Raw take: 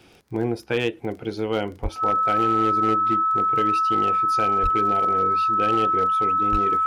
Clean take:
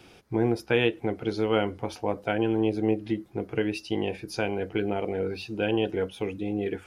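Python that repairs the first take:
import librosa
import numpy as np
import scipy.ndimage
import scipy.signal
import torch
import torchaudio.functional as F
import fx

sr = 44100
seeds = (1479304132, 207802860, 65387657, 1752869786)

y = fx.fix_declip(x, sr, threshold_db=-14.0)
y = fx.fix_declick_ar(y, sr, threshold=6.5)
y = fx.notch(y, sr, hz=1300.0, q=30.0)
y = fx.fix_deplosive(y, sr, at_s=(1.82, 4.62, 6.51))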